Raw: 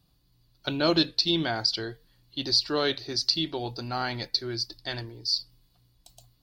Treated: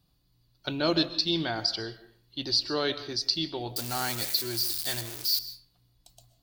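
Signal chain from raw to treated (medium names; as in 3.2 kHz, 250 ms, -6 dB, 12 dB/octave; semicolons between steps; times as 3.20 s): 3.76–5.39 s: zero-crossing glitches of -20.5 dBFS; on a send: reverberation RT60 0.50 s, pre-delay 90 ms, DRR 13.5 dB; on the sum: trim -2.5 dB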